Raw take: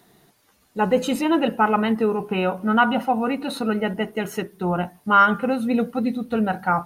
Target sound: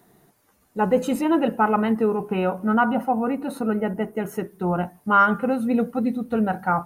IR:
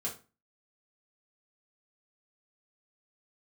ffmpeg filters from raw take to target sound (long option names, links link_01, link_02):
-af "asetnsamples=nb_out_samples=441:pad=0,asendcmd='2.74 equalizer g -15;4.43 equalizer g -8.5',equalizer=frequency=3700:width_type=o:width=1.6:gain=-9"